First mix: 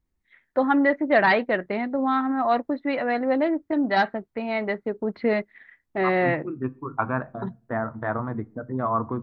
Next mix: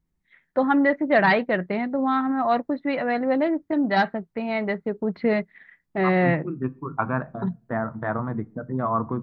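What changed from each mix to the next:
master: add bell 170 Hz +11.5 dB 0.36 oct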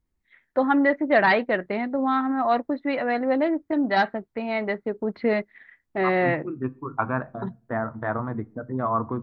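master: add bell 170 Hz -11.5 dB 0.36 oct

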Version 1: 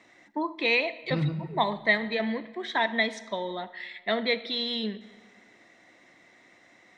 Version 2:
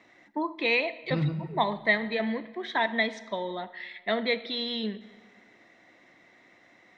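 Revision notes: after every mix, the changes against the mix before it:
first voice: add air absorption 85 m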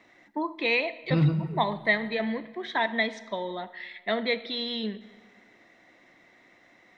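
second voice +5.5 dB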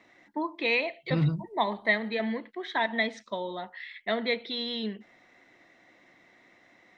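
reverb: off

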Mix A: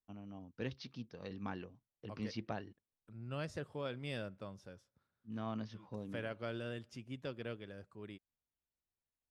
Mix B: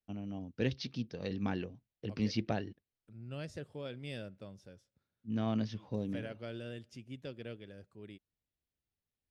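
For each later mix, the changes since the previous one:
first voice +9.0 dB; master: add bell 1100 Hz -9 dB 1 oct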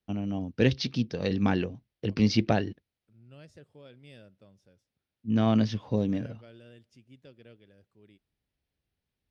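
first voice +10.0 dB; second voice -8.0 dB

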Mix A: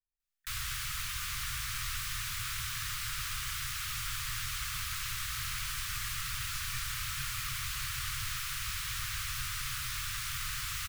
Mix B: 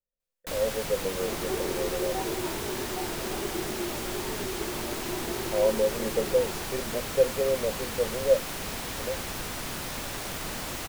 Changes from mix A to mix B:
second sound: unmuted; master: remove Chebyshev band-stop 130–1200 Hz, order 4

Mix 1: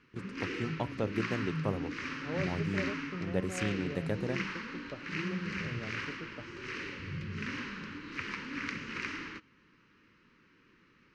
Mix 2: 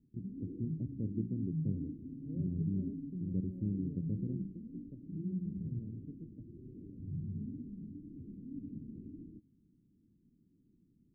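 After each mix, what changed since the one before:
master: add inverse Chebyshev band-stop 900–9500 Hz, stop band 60 dB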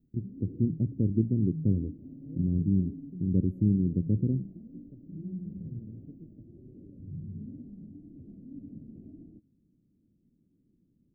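first voice +11.5 dB; background: remove Butterworth band-stop 700 Hz, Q 1.1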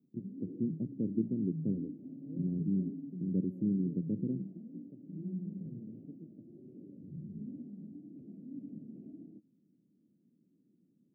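first voice -4.5 dB; master: add HPF 160 Hz 24 dB/oct

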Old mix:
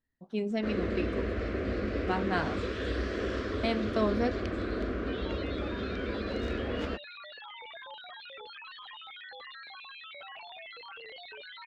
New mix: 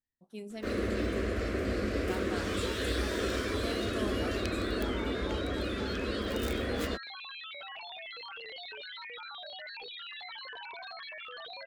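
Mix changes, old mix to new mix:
speech -11.5 dB; second sound: entry -2.60 s; master: remove air absorption 170 m

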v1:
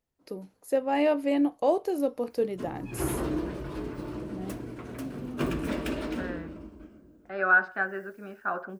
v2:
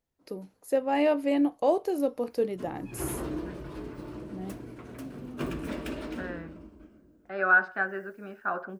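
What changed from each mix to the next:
background -4.0 dB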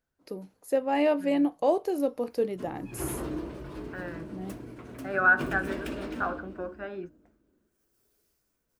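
second voice: entry -2.25 s

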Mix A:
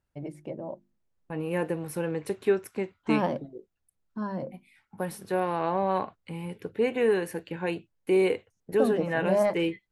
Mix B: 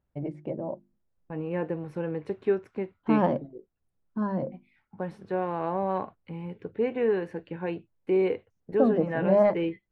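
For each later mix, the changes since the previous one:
first voice +5.0 dB; master: add tape spacing loss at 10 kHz 29 dB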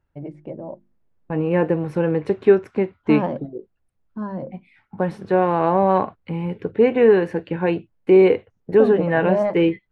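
second voice +11.5 dB

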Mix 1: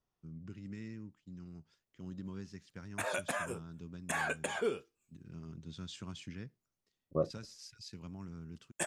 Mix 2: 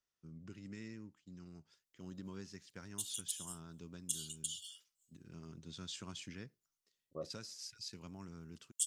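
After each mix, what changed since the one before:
second voice -11.5 dB; background: add brick-wall FIR high-pass 2800 Hz; master: add tone controls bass -6 dB, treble +5 dB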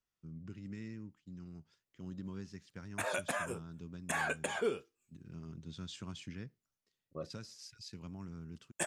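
second voice: remove polynomial smoothing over 65 samples; background: remove brick-wall FIR high-pass 2800 Hz; master: add tone controls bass +6 dB, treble -5 dB

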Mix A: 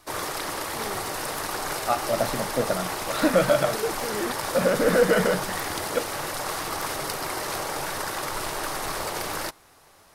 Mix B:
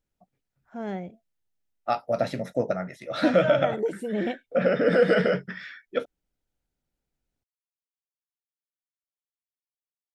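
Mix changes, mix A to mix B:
first voice: remove fixed phaser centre 640 Hz, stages 6; background: muted; master: add bell 1100 Hz -10 dB 0.2 oct

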